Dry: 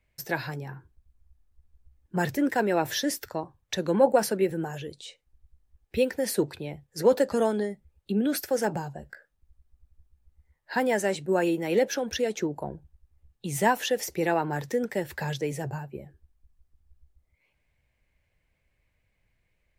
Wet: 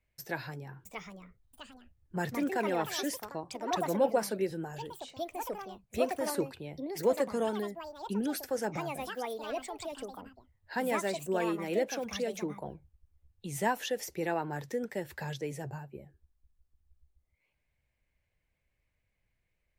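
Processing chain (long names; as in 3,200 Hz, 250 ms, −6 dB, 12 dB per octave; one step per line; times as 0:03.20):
delay with pitch and tempo change per echo 715 ms, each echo +5 semitones, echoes 2, each echo −6 dB
level −7 dB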